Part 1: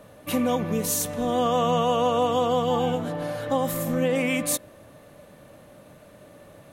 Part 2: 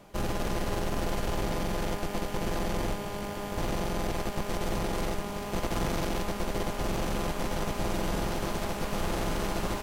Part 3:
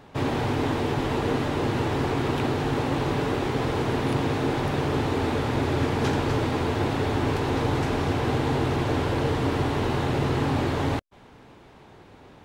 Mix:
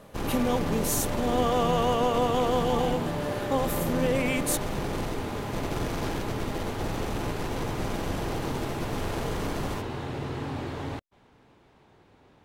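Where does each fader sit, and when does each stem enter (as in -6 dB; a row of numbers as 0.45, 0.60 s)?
-3.0, -3.0, -9.0 dB; 0.00, 0.00, 0.00 s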